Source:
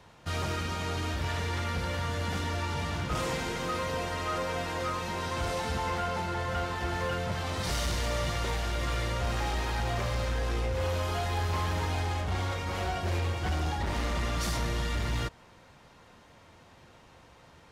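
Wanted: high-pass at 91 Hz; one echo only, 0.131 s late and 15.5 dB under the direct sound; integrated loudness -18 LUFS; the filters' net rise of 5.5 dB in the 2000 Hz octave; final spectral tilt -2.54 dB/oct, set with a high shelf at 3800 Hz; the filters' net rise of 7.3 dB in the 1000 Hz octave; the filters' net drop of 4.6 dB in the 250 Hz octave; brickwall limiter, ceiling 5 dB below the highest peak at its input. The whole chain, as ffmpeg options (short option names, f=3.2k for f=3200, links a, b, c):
-af "highpass=91,equalizer=f=250:t=o:g=-7.5,equalizer=f=1k:t=o:g=8.5,equalizer=f=2k:t=o:g=5.5,highshelf=f=3.8k:g=-6,alimiter=limit=-21dB:level=0:latency=1,aecho=1:1:131:0.168,volume=12dB"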